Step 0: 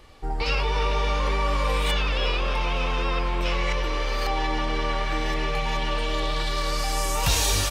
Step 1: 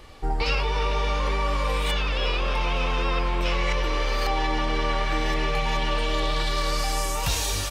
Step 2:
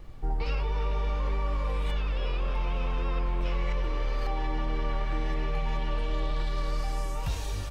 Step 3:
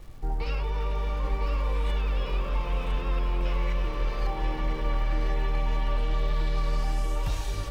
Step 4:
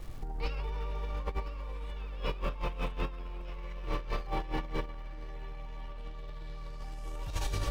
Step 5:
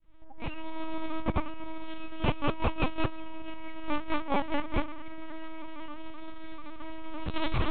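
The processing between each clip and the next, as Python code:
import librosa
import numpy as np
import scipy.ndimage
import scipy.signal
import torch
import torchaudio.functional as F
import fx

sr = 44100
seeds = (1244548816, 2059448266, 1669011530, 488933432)

y1 = fx.rider(x, sr, range_db=5, speed_s=0.5)
y2 = fx.high_shelf(y1, sr, hz=2900.0, db=-9.5)
y2 = fx.dmg_noise_colour(y2, sr, seeds[0], colour='brown', level_db=-41.0)
y2 = fx.low_shelf(y2, sr, hz=220.0, db=7.0)
y2 = y2 * 10.0 ** (-9.0 / 20.0)
y3 = fx.dmg_crackle(y2, sr, seeds[1], per_s=460.0, level_db=-49.0)
y3 = y3 + 10.0 ** (-6.0 / 20.0) * np.pad(y3, (int(1004 * sr / 1000.0), 0))[:len(y3)]
y4 = fx.over_compress(y3, sr, threshold_db=-30.0, ratio=-0.5)
y4 = y4 * 10.0 ** (-4.0 / 20.0)
y5 = fx.fade_in_head(y4, sr, length_s=0.95)
y5 = fx.lpc_vocoder(y5, sr, seeds[2], excitation='pitch_kept', order=8)
y5 = y5 * 10.0 ** (6.5 / 20.0)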